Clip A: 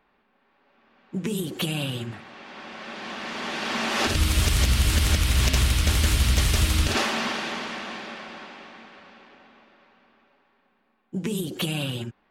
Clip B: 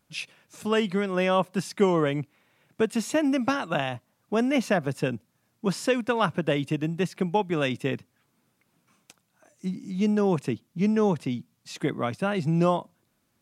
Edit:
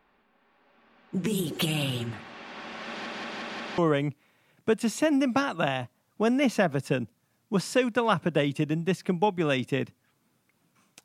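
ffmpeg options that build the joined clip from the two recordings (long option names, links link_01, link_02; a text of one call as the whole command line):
ffmpeg -i cue0.wav -i cue1.wav -filter_complex "[0:a]apad=whole_dur=11.04,atrim=end=11.04,asplit=5[link_01][link_02][link_03][link_04][link_05];[link_01]atrim=end=3.062[link_06];[link_02]atrim=start=2.878:end=3.062[link_07];[link_03]atrim=start=2.878:end=3.062[link_08];[link_04]atrim=start=2.878:end=3.062[link_09];[link_05]atrim=start=2.878:end=3.062[link_10];[1:a]atrim=start=1.898:end=9.16[link_11];[link_06][link_07]acrossfade=duration=0.004:curve1=hsin:curve2=hsin[link_12];[link_12][link_08]acrossfade=duration=0.004:curve1=hsin:curve2=hsin[link_13];[link_13][link_09]acrossfade=duration=0.004:curve1=hsin:curve2=hsin[link_14];[link_14][link_10]acrossfade=duration=0.004:curve1=hsin:curve2=hsin[link_15];[link_15][link_11]acrossfade=duration=0.004:curve1=hsin:curve2=hsin" out.wav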